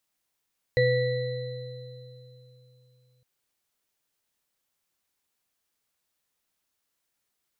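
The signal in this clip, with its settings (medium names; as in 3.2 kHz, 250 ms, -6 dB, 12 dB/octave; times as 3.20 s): sine partials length 2.46 s, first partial 126 Hz, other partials 500/1950/4030 Hz, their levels 5/-2/-11 dB, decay 3.73 s, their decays 2.71/1.61/3.43 s, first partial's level -24 dB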